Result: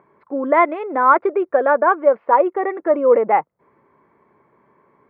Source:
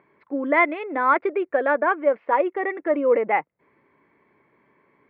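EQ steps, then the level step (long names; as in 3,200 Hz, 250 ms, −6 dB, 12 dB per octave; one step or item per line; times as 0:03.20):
parametric band 290 Hz −5.5 dB 0.23 octaves
high shelf with overshoot 1,600 Hz −7.5 dB, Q 1.5
+5.0 dB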